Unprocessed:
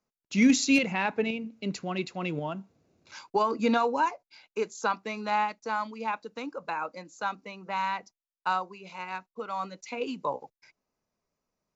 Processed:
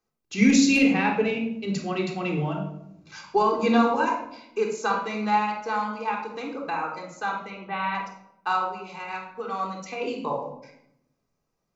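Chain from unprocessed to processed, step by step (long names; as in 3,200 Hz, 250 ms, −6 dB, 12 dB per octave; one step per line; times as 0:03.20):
0:07.50–0:07.95: Butterworth low-pass 3,800 Hz 48 dB per octave
rectangular room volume 2,000 cubic metres, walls furnished, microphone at 3.7 metres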